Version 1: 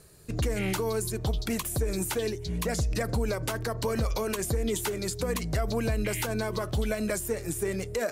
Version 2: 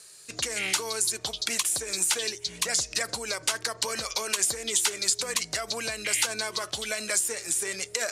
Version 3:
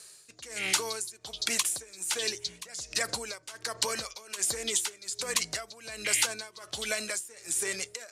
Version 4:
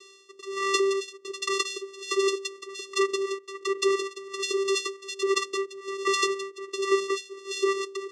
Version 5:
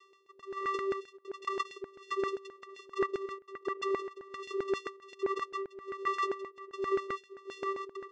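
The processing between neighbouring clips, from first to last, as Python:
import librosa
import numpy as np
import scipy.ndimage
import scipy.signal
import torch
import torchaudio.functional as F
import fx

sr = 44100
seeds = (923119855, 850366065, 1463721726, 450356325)

y1 = fx.weighting(x, sr, curve='ITU-R 468')
y2 = y1 * (1.0 - 0.88 / 2.0 + 0.88 / 2.0 * np.cos(2.0 * np.pi * 1.3 * (np.arange(len(y1)) / sr)))
y3 = fx.vocoder(y2, sr, bands=4, carrier='square', carrier_hz=391.0)
y3 = F.gain(torch.from_numpy(y3), 6.5).numpy()
y4 = fx.filter_lfo_bandpass(y3, sr, shape='saw_down', hz=7.6, low_hz=460.0, high_hz=1600.0, q=2.1)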